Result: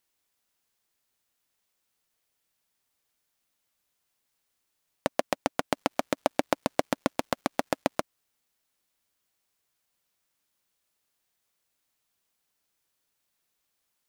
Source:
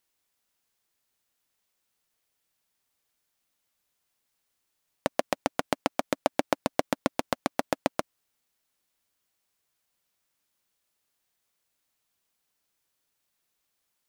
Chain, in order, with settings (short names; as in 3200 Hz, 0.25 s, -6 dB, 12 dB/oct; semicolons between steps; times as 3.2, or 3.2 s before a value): 5.72–7.99 crackle 400/s -55 dBFS